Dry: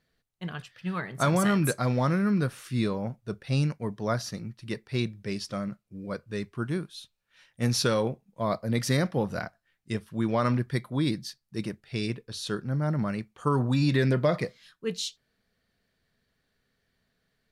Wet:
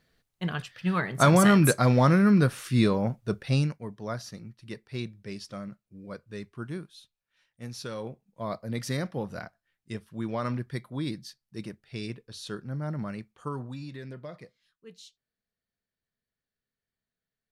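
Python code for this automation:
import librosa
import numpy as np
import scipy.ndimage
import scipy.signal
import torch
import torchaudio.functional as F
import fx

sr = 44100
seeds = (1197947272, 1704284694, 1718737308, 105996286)

y = fx.gain(x, sr, db=fx.line((3.42, 5.0), (3.85, -6.0), (6.81, -6.0), (7.75, -14.5), (8.27, -5.5), (13.32, -5.5), (13.91, -17.5)))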